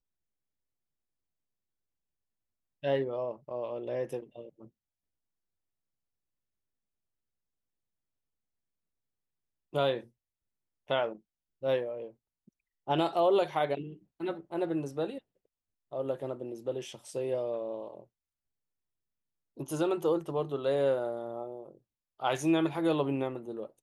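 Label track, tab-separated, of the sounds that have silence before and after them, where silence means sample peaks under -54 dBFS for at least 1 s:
2.830000	4.680000	sound
9.730000	18.040000	sound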